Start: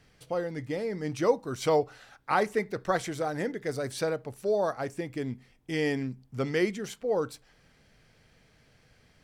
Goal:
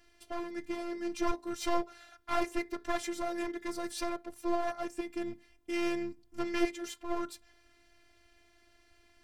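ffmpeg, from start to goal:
-af "aeval=exprs='clip(val(0),-1,0.0224)':c=same,afftfilt=real='hypot(re,im)*cos(PI*b)':imag='0':win_size=512:overlap=0.75,volume=1.19"

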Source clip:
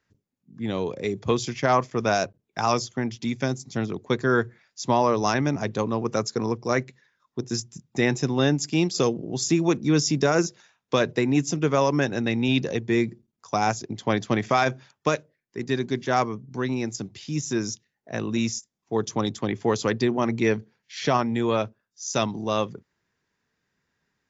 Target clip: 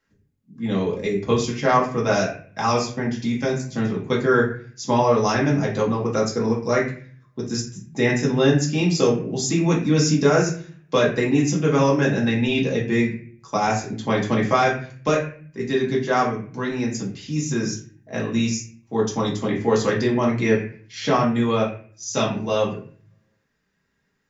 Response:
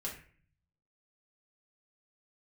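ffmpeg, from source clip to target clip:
-filter_complex "[1:a]atrim=start_sample=2205[s0];[0:a][s0]afir=irnorm=-1:irlink=0,volume=1.41"

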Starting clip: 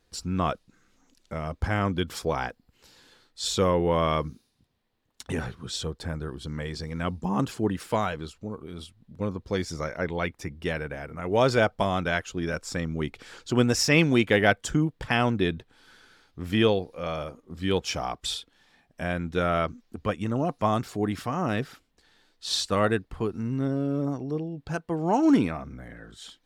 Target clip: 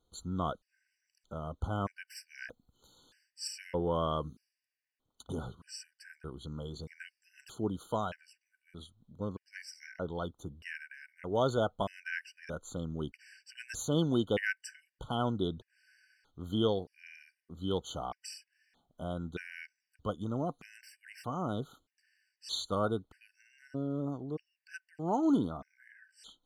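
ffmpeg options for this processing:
-filter_complex "[0:a]asettb=1/sr,asplit=3[s0][s1][s2];[s0]atrim=end=2.484[s3];[s1]atrim=start=2.48:end=3.48,asetpts=PTS-STARTPTS,afade=t=in:d=0.004:c=qsin,afade=t=out:st=0.996:d=0.004:c=qsin,bass=f=250:g=2,treble=f=4000:g=4[s4];[s2]atrim=start=3.476[s5];[s3][s4]acrossfade=d=0.004:c1=hsin:c2=qsin[s6];[s6][s5]acrossfade=d=0.004:c1=qsin:c2=hsin,afftfilt=real='re*gt(sin(2*PI*0.8*pts/sr)*(1-2*mod(floor(b*sr/1024/1500),2)),0)':imag='im*gt(sin(2*PI*0.8*pts/sr)*(1-2*mod(floor(b*sr/1024/1500),2)),0)':win_size=1024:overlap=0.75,volume=0.422"

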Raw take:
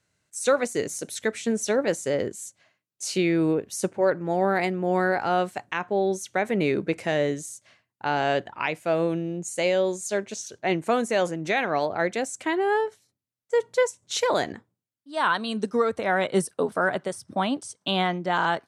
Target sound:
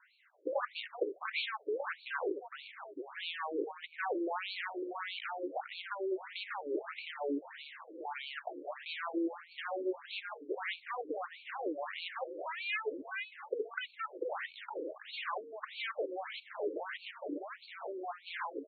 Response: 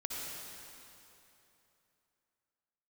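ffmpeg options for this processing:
-filter_complex "[0:a]aresample=16000,aeval=exprs='0.266*sin(PI/2*4.47*val(0)/0.266)':c=same,aresample=44100,equalizer=f=3500:t=o:w=1.5:g=-7,asplit=6[s0][s1][s2][s3][s4][s5];[s1]adelay=457,afreqshift=-82,volume=0.211[s6];[s2]adelay=914,afreqshift=-164,volume=0.108[s7];[s3]adelay=1371,afreqshift=-246,volume=0.055[s8];[s4]adelay=1828,afreqshift=-328,volume=0.0282[s9];[s5]adelay=2285,afreqshift=-410,volume=0.0143[s10];[s0][s6][s7][s8][s9][s10]amix=inputs=6:normalize=0,acrossover=split=3700[s11][s12];[s11]asoftclip=type=hard:threshold=0.133[s13];[s13][s12]amix=inputs=2:normalize=0,alimiter=limit=0.1:level=0:latency=1:release=87,asubboost=boost=5:cutoff=210,acompressor=threshold=0.0447:ratio=2.5,afftfilt=real='re*between(b*sr/1024,380*pow(3200/380,0.5+0.5*sin(2*PI*1.6*pts/sr))/1.41,380*pow(3200/380,0.5+0.5*sin(2*PI*1.6*pts/sr))*1.41)':imag='im*between(b*sr/1024,380*pow(3200/380,0.5+0.5*sin(2*PI*1.6*pts/sr))/1.41,380*pow(3200/380,0.5+0.5*sin(2*PI*1.6*pts/sr))*1.41)':win_size=1024:overlap=0.75,volume=1.12"

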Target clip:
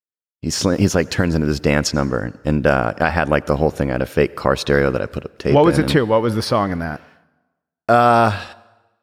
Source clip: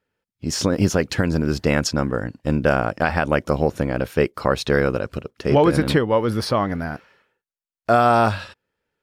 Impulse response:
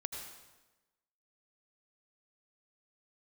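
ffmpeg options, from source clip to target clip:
-filter_complex "[0:a]agate=range=0.0224:threshold=0.00355:ratio=3:detection=peak,asplit=2[s0][s1];[1:a]atrim=start_sample=2205,lowshelf=f=110:g=-11.5[s2];[s1][s2]afir=irnorm=-1:irlink=0,volume=0.15[s3];[s0][s3]amix=inputs=2:normalize=0,volume=1.26"

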